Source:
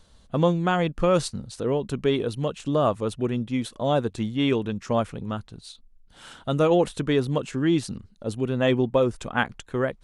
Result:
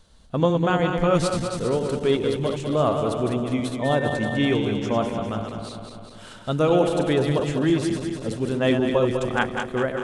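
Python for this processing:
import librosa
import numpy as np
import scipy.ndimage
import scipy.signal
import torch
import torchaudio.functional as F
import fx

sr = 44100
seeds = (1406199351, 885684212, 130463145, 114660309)

y = fx.reverse_delay_fb(x, sr, ms=100, feedback_pct=79, wet_db=-6.0)
y = fx.dmg_tone(y, sr, hz=1800.0, level_db=-31.0, at=(3.82, 4.53), fade=0.02)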